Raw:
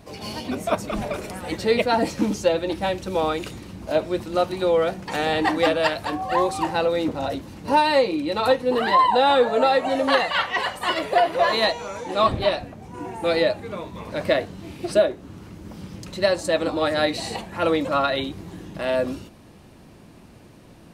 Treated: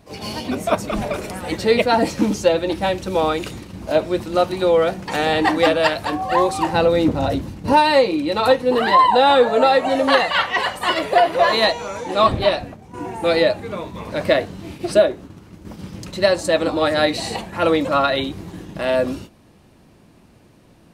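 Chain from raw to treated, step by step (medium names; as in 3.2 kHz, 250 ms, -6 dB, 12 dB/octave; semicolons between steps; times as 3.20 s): gate -38 dBFS, range -7 dB; 6.73–7.73 s: bass shelf 230 Hz +9.5 dB; trim +4 dB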